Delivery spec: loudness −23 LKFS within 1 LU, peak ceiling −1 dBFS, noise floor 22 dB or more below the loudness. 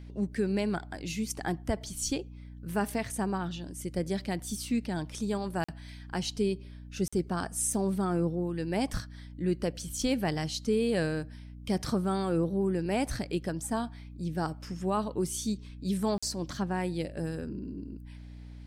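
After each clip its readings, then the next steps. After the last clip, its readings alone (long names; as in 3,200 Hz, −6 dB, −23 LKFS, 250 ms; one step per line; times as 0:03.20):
number of dropouts 3; longest dropout 45 ms; mains hum 60 Hz; hum harmonics up to 300 Hz; level of the hum −43 dBFS; integrated loudness −32.0 LKFS; sample peak −16.0 dBFS; target loudness −23.0 LKFS
→ repair the gap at 0:05.64/0:07.08/0:16.18, 45 ms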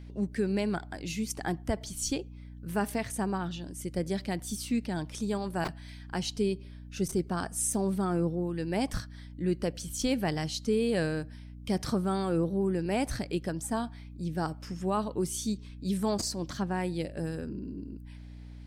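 number of dropouts 0; mains hum 60 Hz; hum harmonics up to 300 Hz; level of the hum −43 dBFS
→ hum removal 60 Hz, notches 5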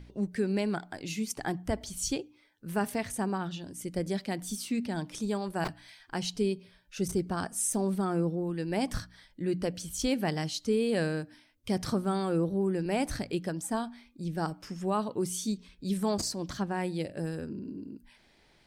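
mains hum none found; integrated loudness −32.5 LKFS; sample peak −17.0 dBFS; target loudness −23.0 LKFS
→ level +9.5 dB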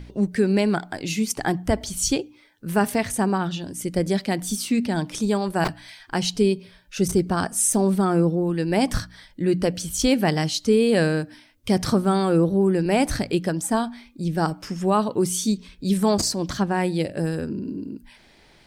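integrated loudness −23.0 LKFS; sample peak −7.5 dBFS; background noise floor −54 dBFS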